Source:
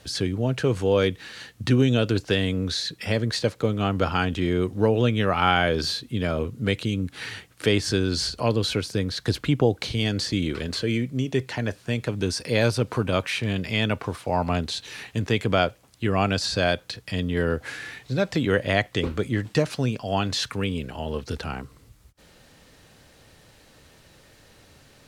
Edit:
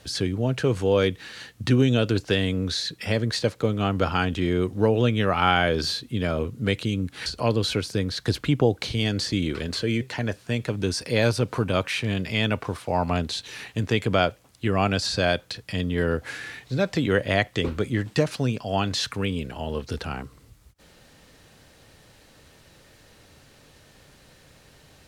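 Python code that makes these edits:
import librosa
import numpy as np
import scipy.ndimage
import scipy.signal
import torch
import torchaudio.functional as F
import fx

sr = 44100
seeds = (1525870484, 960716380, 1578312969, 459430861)

y = fx.edit(x, sr, fx.cut(start_s=7.26, length_s=1.0),
    fx.cut(start_s=11.01, length_s=0.39), tone=tone)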